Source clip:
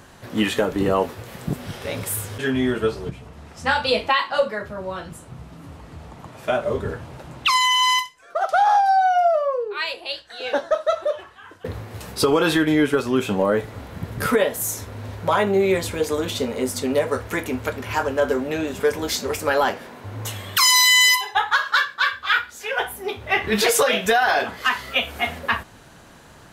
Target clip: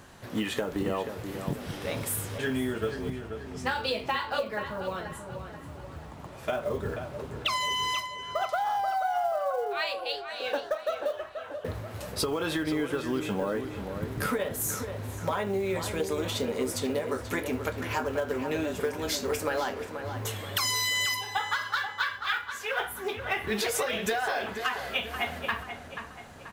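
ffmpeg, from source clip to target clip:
-filter_complex "[0:a]acompressor=threshold=0.0891:ratio=20,acrusher=bits=7:mode=log:mix=0:aa=0.000001,asplit=2[s0][s1];[s1]adelay=484,lowpass=f=2900:p=1,volume=0.398,asplit=2[s2][s3];[s3]adelay=484,lowpass=f=2900:p=1,volume=0.5,asplit=2[s4][s5];[s5]adelay=484,lowpass=f=2900:p=1,volume=0.5,asplit=2[s6][s7];[s7]adelay=484,lowpass=f=2900:p=1,volume=0.5,asplit=2[s8][s9];[s9]adelay=484,lowpass=f=2900:p=1,volume=0.5,asplit=2[s10][s11];[s11]adelay=484,lowpass=f=2900:p=1,volume=0.5[s12];[s0][s2][s4][s6][s8][s10][s12]amix=inputs=7:normalize=0,volume=0.596"

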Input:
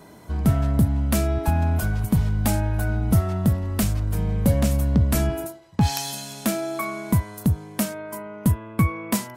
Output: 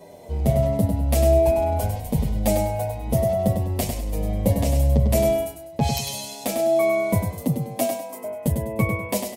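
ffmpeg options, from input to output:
-filter_complex "[0:a]firequalizer=gain_entry='entry(330,0);entry(530,14);entry(1400,-12);entry(2000,2)':delay=0.05:min_phase=1,asettb=1/sr,asplit=3[s0][s1][s2];[s0]atrim=end=7.304[s3];[s1]atrim=start=7.3:end=8.24,asetpts=PTS-STARTPTS,afade=t=in:d=0.004:c=qsin,afade=t=out:st=0.936:d=0.004:c=qsin,afreqshift=43[s4];[s2]atrim=start=8.236[s5];[s3][s4]acrossfade=d=0.004:c1=hsin:c2=qsin[s6];[s6][s5]acrossfade=d=0.004:c1=qsin:c2=hsin,aecho=1:1:100|200|300|400:0.501|0.16|0.0513|0.0164,asplit=2[s7][s8];[s8]adelay=7.8,afreqshift=-1.1[s9];[s7][s9]amix=inputs=2:normalize=1"

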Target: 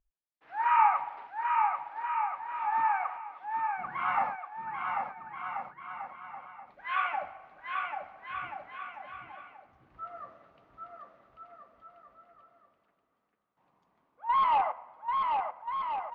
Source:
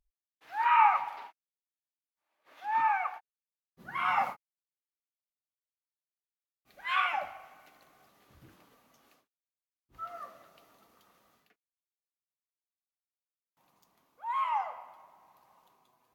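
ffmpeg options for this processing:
-filter_complex "[0:a]asettb=1/sr,asplit=3[s0][s1][s2];[s0]atrim=end=14.294[s3];[s1]atrim=start=14.29:end=14.72,asetpts=PTS-STARTPTS,afade=t=in:d=0.004:c=qsin,afade=t=out:st=0.426:d=0.004:c=qsin,aeval=exprs='0.0891*sin(PI/2*1.78*val(0)/0.0891)':c=same[s4];[s2]atrim=start=14.716[s5];[s3][s4]acrossfade=d=0.004:c1=hsin:c2=qsin[s6];[s6][s5]acrossfade=d=0.004:c1=qsin:c2=hsin,lowpass=2000,asplit=2[s7][s8];[s8]aecho=0:1:790|1382|1827|2160|2410:0.631|0.398|0.251|0.158|0.1[s9];[s7][s9]amix=inputs=2:normalize=0"

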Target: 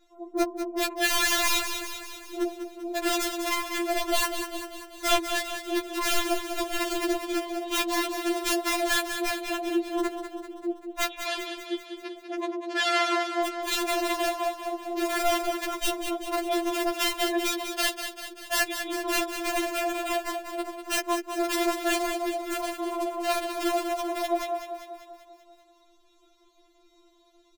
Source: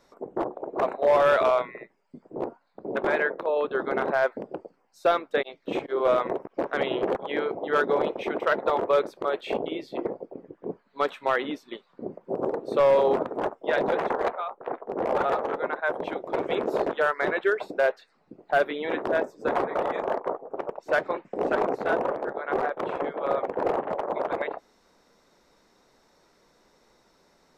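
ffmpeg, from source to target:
-filter_complex "[0:a]aecho=1:1:3.2:0.7,aeval=exprs='(mod(6.68*val(0)+1,2)-1)/6.68':c=same,asettb=1/sr,asplit=3[s0][s1][s2];[s0]atrim=end=11.104[s3];[s1]atrim=start=11.1:end=13.4,asetpts=PTS-STARTPTS,afade=t=in:d=0.004:c=qsin,afade=t=out:st=2.296:d=0.004:c=qsin,highpass=210,lowpass=4500[s4];[s2]atrim=start=13.396[s5];[s3][s4]acrossfade=d=0.004:c1=hsin:c2=qsin[s6];[s6][s5]acrossfade=d=0.004:c1=qsin:c2=hsin,aecho=1:1:195|390|585|780|975|1170|1365:0.376|0.218|0.126|0.0733|0.0425|0.0247|0.0143,afftfilt=real='re*4*eq(mod(b,16),0)':imag='im*4*eq(mod(b,16),0)':win_size=2048:overlap=0.75,volume=0.891"

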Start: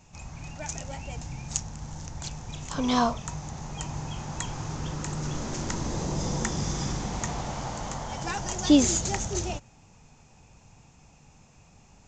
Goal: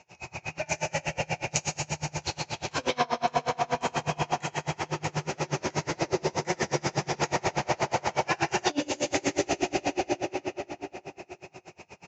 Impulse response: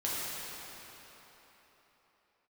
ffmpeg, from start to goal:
-filter_complex "[0:a]equalizer=f=250:t=o:w=0.67:g=-12,equalizer=f=630:t=o:w=0.67:g=4,equalizer=f=2500:t=o:w=0.67:g=8,asplit=2[s0][s1];[s1]adelay=1108,volume=0.126,highshelf=f=4000:g=-24.9[s2];[s0][s2]amix=inputs=2:normalize=0[s3];[1:a]atrim=start_sample=2205[s4];[s3][s4]afir=irnorm=-1:irlink=0,asettb=1/sr,asplit=3[s5][s6][s7];[s5]atrim=end=4.414[s8];[s6]atrim=start=4.41:end=7.14,asetpts=PTS-STARTPTS,afade=t=in:d=0.004:c=qsin,afade=t=out:st=2.726:d=0.004:c=qsin,flanger=delay=5.4:depth=8.4:regen=44:speed=1.9:shape=sinusoidal[s9];[s7]atrim=start=7.136[s10];[s8][s9]acrossfade=d=0.004:c1=hsin:c2=qsin[s11];[s11][s10]acrossfade=d=0.004:c1=qsin:c2=hsin,highpass=170,equalizer=f=370:t=q:w=4:g=7,equalizer=f=1100:t=q:w=4:g=-5,equalizer=f=3400:t=q:w=4:g=-7,lowpass=f=5900:w=0.5412,lowpass=f=5900:w=1.3066,acompressor=threshold=0.0501:ratio=12,aeval=exprs='val(0)*pow(10,-31*(0.5-0.5*cos(2*PI*8.3*n/s))/20)':c=same,volume=2.51"

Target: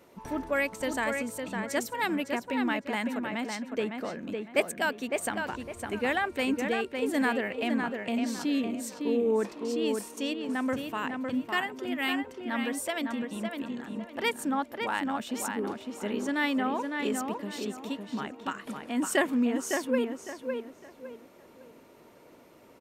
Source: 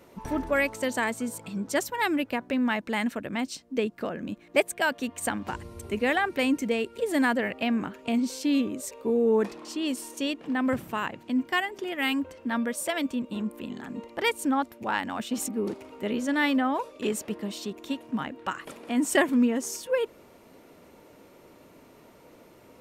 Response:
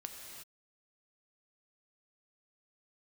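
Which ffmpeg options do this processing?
-filter_complex "[0:a]lowshelf=f=130:g=-6.5,asplit=2[s0][s1];[s1]adelay=557,lowpass=f=3100:p=1,volume=0.596,asplit=2[s2][s3];[s3]adelay=557,lowpass=f=3100:p=1,volume=0.31,asplit=2[s4][s5];[s5]adelay=557,lowpass=f=3100:p=1,volume=0.31,asplit=2[s6][s7];[s7]adelay=557,lowpass=f=3100:p=1,volume=0.31[s8];[s0][s2][s4][s6][s8]amix=inputs=5:normalize=0,volume=0.708"

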